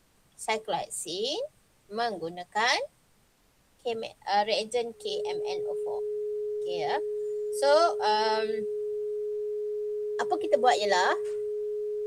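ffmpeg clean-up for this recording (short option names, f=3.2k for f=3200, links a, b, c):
-af "bandreject=f=420:w=30,agate=range=-21dB:threshold=-56dB"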